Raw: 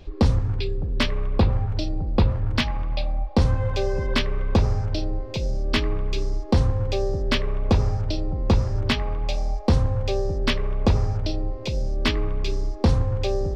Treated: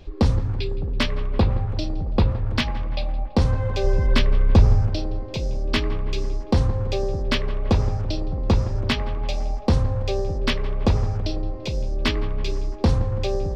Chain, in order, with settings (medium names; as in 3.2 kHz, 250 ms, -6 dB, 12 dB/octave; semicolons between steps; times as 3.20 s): 3.84–4.87 s: bass shelf 140 Hz +8 dB; tape echo 167 ms, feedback 82%, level -15.5 dB, low-pass 1.9 kHz